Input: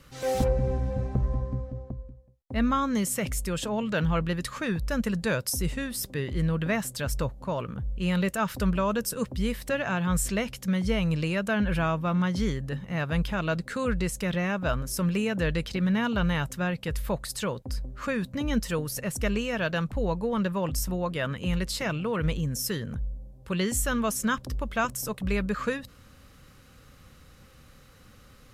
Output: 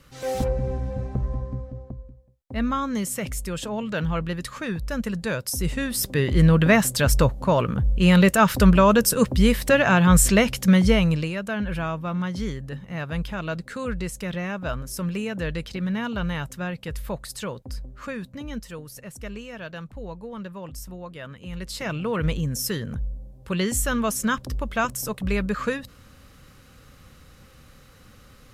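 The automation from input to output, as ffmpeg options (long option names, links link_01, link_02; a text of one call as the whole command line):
ffmpeg -i in.wav -af "volume=22dB,afade=type=in:start_time=5.46:duration=1:silence=0.298538,afade=type=out:start_time=10.75:duration=0.57:silence=0.251189,afade=type=out:start_time=17.76:duration=0.94:silence=0.446684,afade=type=in:start_time=21.5:duration=0.6:silence=0.266073" out.wav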